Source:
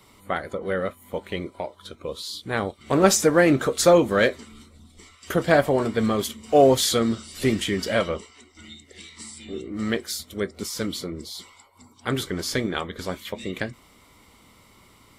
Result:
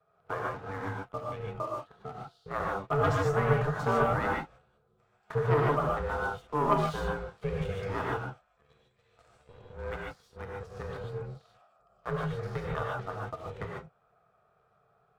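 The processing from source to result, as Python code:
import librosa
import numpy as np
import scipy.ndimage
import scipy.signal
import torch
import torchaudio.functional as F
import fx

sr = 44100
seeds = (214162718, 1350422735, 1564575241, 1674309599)

y = fx.double_bandpass(x, sr, hz=380.0, octaves=2.6)
y = fx.leveller(y, sr, passes=2)
y = y * np.sin(2.0 * np.pi * 290.0 * np.arange(len(y)) / sr)
y = fx.rev_gated(y, sr, seeds[0], gate_ms=170, shape='rising', drr_db=-2.0)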